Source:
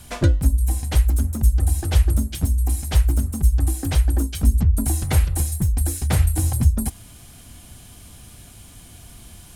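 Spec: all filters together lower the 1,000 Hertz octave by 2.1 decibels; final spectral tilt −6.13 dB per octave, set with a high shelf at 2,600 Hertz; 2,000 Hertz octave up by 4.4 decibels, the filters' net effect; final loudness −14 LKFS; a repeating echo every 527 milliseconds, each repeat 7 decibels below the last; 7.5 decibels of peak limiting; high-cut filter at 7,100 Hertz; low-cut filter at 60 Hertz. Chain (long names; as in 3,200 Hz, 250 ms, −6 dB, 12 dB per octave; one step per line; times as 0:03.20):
high-pass filter 60 Hz
low-pass filter 7,100 Hz
parametric band 1,000 Hz −4.5 dB
parametric band 2,000 Hz +9 dB
high-shelf EQ 2,600 Hz −5 dB
brickwall limiter −14.5 dBFS
repeating echo 527 ms, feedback 45%, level −7 dB
level +10 dB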